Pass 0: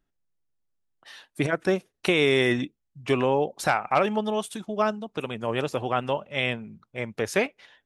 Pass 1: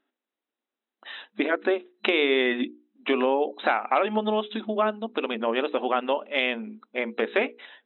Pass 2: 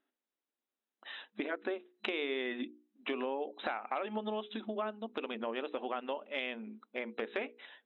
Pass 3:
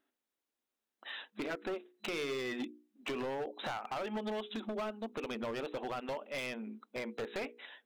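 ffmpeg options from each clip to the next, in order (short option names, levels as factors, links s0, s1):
-af "afftfilt=real='re*between(b*sr/4096,210,4000)':imag='im*between(b*sr/4096,210,4000)':win_size=4096:overlap=0.75,acompressor=threshold=0.0282:ratio=2,bandreject=f=60:t=h:w=6,bandreject=f=120:t=h:w=6,bandreject=f=180:t=h:w=6,bandreject=f=240:t=h:w=6,bandreject=f=300:t=h:w=6,bandreject=f=360:t=h:w=6,bandreject=f=420:t=h:w=6,bandreject=f=480:t=h:w=6,volume=2.24"
-af "acompressor=threshold=0.0282:ratio=2,volume=0.473"
-af "volume=59.6,asoftclip=hard,volume=0.0168,volume=1.26"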